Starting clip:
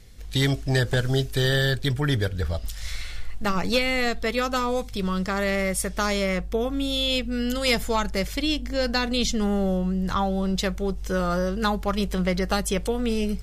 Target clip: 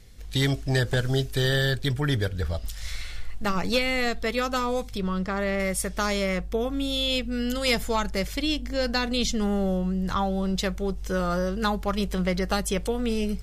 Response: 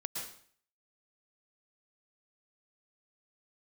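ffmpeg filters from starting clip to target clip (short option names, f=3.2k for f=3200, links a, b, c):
-filter_complex "[0:a]asettb=1/sr,asplit=3[a][b][c];[a]atrim=end=4.984[d];[b]atrim=start=4.98:end=5.6,asetpts=PTS-STARTPTS,afade=t=in:d=0.004:c=qsin,afade=t=out:st=0.616:d=0.004:c=qsin,highshelf=f=4k:g=-11.5[e];[c]atrim=start=5.596[f];[d][e]acrossfade=d=0.004:c1=hsin:c2=qsin[g];[g][f]acrossfade=d=0.004:c1=qsin:c2=hsin,volume=-1.5dB"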